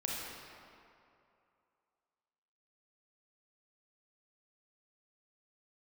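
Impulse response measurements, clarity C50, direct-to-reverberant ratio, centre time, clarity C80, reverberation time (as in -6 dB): -2.0 dB, -4.0 dB, 0.14 s, 0.0 dB, 2.6 s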